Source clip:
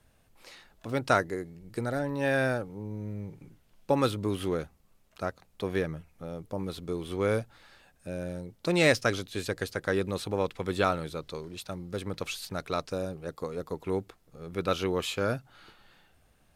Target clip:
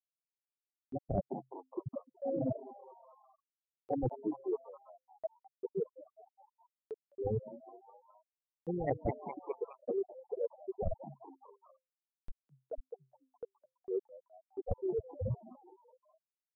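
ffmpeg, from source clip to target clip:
ffmpeg -i in.wav -filter_complex "[0:a]acrusher=samples=34:mix=1:aa=0.000001,afftfilt=real='re*gte(hypot(re,im),0.251)':imag='im*gte(hypot(re,im),0.251)':win_size=1024:overlap=0.75,acompressor=mode=upward:threshold=-44dB:ratio=2.5,asplit=2[link_01][link_02];[link_02]asplit=4[link_03][link_04][link_05][link_06];[link_03]adelay=208,afreqshift=130,volume=-23dB[link_07];[link_04]adelay=416,afreqshift=260,volume=-28.4dB[link_08];[link_05]adelay=624,afreqshift=390,volume=-33.7dB[link_09];[link_06]adelay=832,afreqshift=520,volume=-39.1dB[link_10];[link_07][link_08][link_09][link_10]amix=inputs=4:normalize=0[link_11];[link_01][link_11]amix=inputs=2:normalize=0,areverse,acompressor=threshold=-36dB:ratio=8,areverse,volume=5dB" out.wav

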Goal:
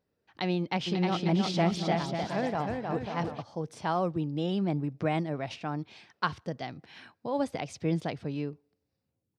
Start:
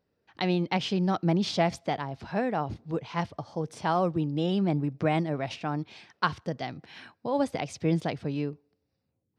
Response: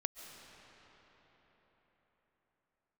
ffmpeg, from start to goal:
-filter_complex "[0:a]asplit=3[link_01][link_02][link_03];[link_01]afade=type=out:start_time=0.86:duration=0.02[link_04];[link_02]aecho=1:1:310|542.5|716.9|847.7|945.7:0.631|0.398|0.251|0.158|0.1,afade=type=in:start_time=0.86:duration=0.02,afade=type=out:start_time=3.41:duration=0.02[link_05];[link_03]afade=type=in:start_time=3.41:duration=0.02[link_06];[link_04][link_05][link_06]amix=inputs=3:normalize=0,volume=-3dB"

